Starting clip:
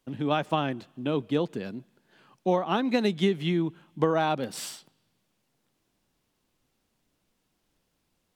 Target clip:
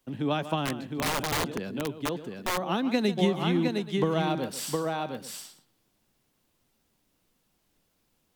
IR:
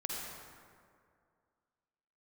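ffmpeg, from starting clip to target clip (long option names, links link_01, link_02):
-filter_complex "[0:a]highshelf=frequency=12000:gain=8.5,asplit=2[link_01][link_02];[link_02]aecho=0:1:143|711|829:0.178|0.562|0.119[link_03];[link_01][link_03]amix=inputs=2:normalize=0,acrossover=split=310|3000[link_04][link_05][link_06];[link_05]acompressor=threshold=-26dB:ratio=6[link_07];[link_04][link_07][link_06]amix=inputs=3:normalize=0,asettb=1/sr,asplit=3[link_08][link_09][link_10];[link_08]atrim=end=0.644[link_11];[link_09]atrim=start=0.64:end=2.62,asetpts=PTS-STARTPTS,afade=type=in:duration=0.004:curve=qsin,afade=type=out:start_time=1.976:duration=0.004:curve=qsin,aeval=exprs='(mod(12.6*val(0)+1,2)-1)/12.6':channel_layout=same[link_12];[link_10]atrim=start=2.616[link_13];[link_11][link_12]acrossfade=duration=0.004:curve1=hsin:curve2=qsin[link_14];[link_14][link_13]acrossfade=duration=0.004:curve1=qsin:curve2=hsin"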